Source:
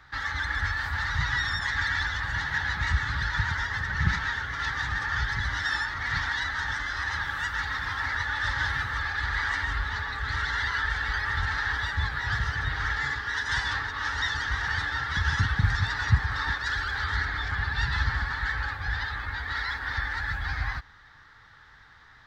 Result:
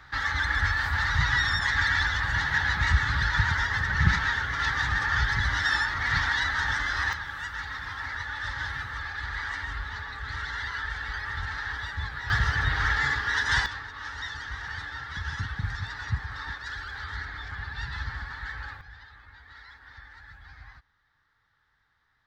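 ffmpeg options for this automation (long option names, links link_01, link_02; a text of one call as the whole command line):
ffmpeg -i in.wav -af "asetnsamples=nb_out_samples=441:pad=0,asendcmd='7.13 volume volume -5dB;12.3 volume volume 3.5dB;13.66 volume volume -7.5dB;18.81 volume volume -18dB',volume=3dB" out.wav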